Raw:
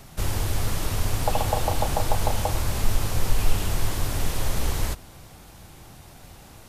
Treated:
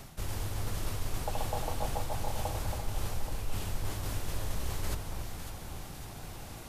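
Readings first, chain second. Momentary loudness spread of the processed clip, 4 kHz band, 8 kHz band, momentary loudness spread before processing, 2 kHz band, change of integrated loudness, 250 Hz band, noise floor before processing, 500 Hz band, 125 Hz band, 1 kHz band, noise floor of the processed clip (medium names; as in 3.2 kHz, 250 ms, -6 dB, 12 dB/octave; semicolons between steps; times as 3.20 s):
8 LU, -10.0 dB, -10.0 dB, 21 LU, -9.5 dB, -10.5 dB, -9.0 dB, -47 dBFS, -9.5 dB, -9.0 dB, -9.5 dB, -46 dBFS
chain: reverse; compression 6:1, threshold -31 dBFS, peak gain reduction 18 dB; reverse; echo whose repeats swap between lows and highs 276 ms, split 1.5 kHz, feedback 73%, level -5 dB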